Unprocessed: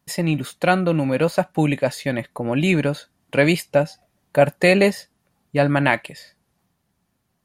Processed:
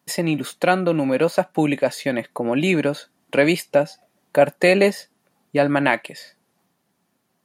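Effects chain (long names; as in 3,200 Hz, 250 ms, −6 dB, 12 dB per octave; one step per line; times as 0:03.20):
high-pass filter 260 Hz 12 dB per octave
in parallel at −1.5 dB: downward compressor, threshold −27 dBFS, peak gain reduction 16.5 dB
on the sum: low-shelf EQ 420 Hz +5 dB
level −2.5 dB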